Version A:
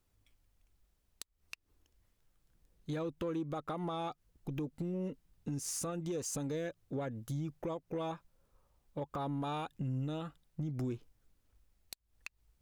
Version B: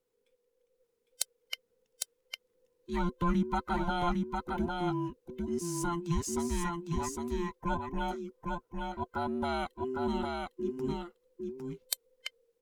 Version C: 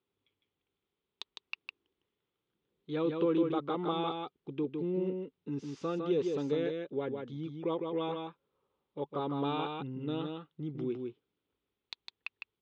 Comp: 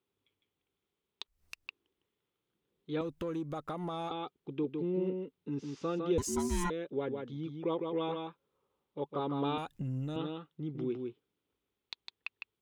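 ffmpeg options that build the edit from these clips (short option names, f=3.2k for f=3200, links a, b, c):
-filter_complex "[0:a]asplit=3[a][b][c];[2:a]asplit=5[d][e][f][g][h];[d]atrim=end=1.272[i];[a]atrim=start=1.268:end=1.672[j];[e]atrim=start=1.668:end=3.012[k];[b]atrim=start=3.008:end=4.112[l];[f]atrim=start=4.108:end=6.182[m];[1:a]atrim=start=6.178:end=6.702[n];[g]atrim=start=6.698:end=9.582[o];[c]atrim=start=9.578:end=10.162[p];[h]atrim=start=10.158[q];[i][j]acrossfade=d=0.004:c1=hsin:c2=hsin[r];[r][k]acrossfade=d=0.004:c1=hsin:c2=hsin[s];[s][l]acrossfade=d=0.004:c1=hsin:c2=hsin[t];[t][m]acrossfade=d=0.004:c1=hsin:c2=hsin[u];[u][n]acrossfade=d=0.004:c1=hsin:c2=hsin[v];[v][o]acrossfade=d=0.004:c1=hsin:c2=hsin[w];[w][p]acrossfade=d=0.004:c1=hsin:c2=hsin[x];[x][q]acrossfade=d=0.004:c1=hsin:c2=hsin"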